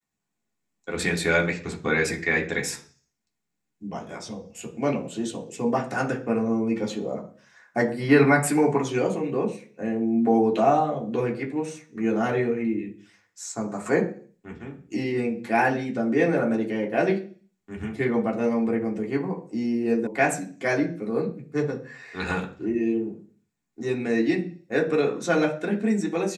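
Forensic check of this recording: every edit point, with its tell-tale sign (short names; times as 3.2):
20.07 sound cut off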